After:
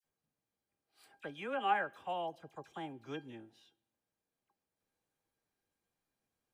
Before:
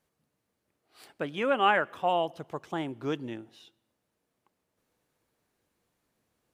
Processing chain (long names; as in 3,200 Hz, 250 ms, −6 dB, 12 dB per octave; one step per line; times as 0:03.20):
tuned comb filter 800 Hz, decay 0.17 s, harmonics all, mix 80%
all-pass dispersion lows, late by 45 ms, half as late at 1,700 Hz
level +1 dB